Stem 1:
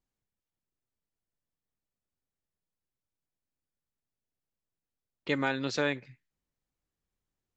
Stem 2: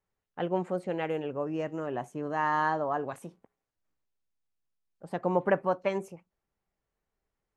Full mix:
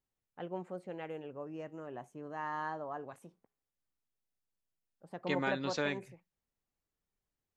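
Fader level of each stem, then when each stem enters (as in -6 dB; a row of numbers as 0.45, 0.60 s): -5.0, -11.0 dB; 0.00, 0.00 s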